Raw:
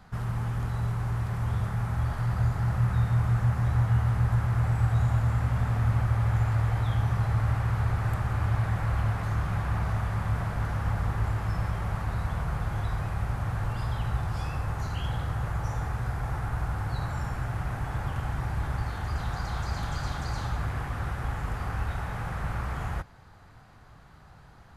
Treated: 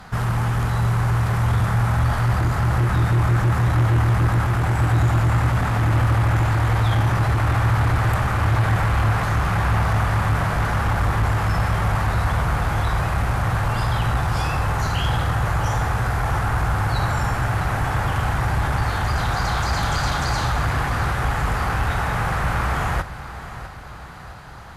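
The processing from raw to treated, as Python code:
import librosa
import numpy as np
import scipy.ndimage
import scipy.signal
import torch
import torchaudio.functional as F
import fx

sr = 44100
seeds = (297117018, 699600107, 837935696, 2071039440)

p1 = fx.low_shelf(x, sr, hz=390.0, db=-6.0)
p2 = fx.cheby_harmonics(p1, sr, harmonics=(5,), levels_db=(-12,), full_scale_db=-18.5)
p3 = p2 + fx.echo_feedback(p2, sr, ms=658, feedback_pct=51, wet_db=-14, dry=0)
y = p3 * 10.0 ** (8.0 / 20.0)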